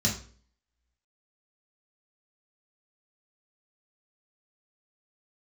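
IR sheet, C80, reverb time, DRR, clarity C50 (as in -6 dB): 13.0 dB, 0.45 s, -3.0 dB, 8.5 dB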